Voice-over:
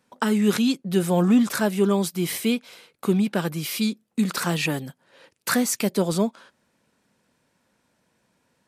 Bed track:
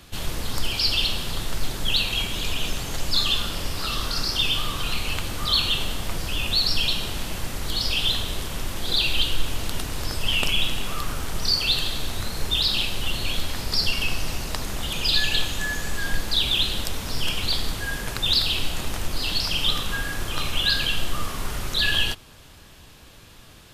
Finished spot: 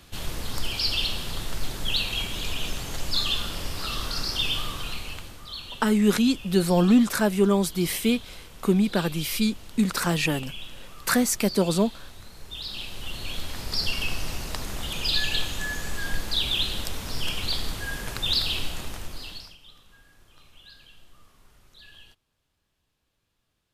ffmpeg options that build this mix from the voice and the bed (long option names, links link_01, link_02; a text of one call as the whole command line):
ffmpeg -i stem1.wav -i stem2.wav -filter_complex "[0:a]adelay=5600,volume=0dB[link_01];[1:a]volume=9.5dB,afade=type=out:start_time=4.56:duration=0.87:silence=0.223872,afade=type=in:start_time=12.46:duration=1.48:silence=0.223872,afade=type=out:start_time=18.56:duration=1.01:silence=0.0562341[link_02];[link_01][link_02]amix=inputs=2:normalize=0" out.wav